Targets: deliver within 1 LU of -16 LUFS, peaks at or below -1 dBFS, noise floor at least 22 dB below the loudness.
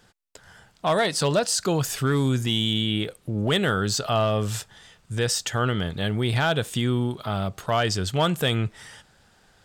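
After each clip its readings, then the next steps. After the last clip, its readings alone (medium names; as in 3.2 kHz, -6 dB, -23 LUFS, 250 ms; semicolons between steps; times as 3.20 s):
clipped samples 0.3%; clipping level -14.5 dBFS; loudness -24.5 LUFS; peak level -14.5 dBFS; loudness target -16.0 LUFS
-> clip repair -14.5 dBFS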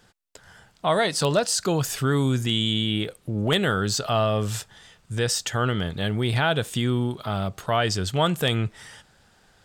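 clipped samples 0.0%; loudness -24.5 LUFS; peak level -7.0 dBFS; loudness target -16.0 LUFS
-> trim +8.5 dB; peak limiter -1 dBFS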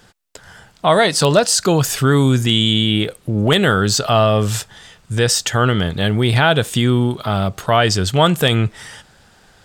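loudness -16.0 LUFS; peak level -1.0 dBFS; noise floor -51 dBFS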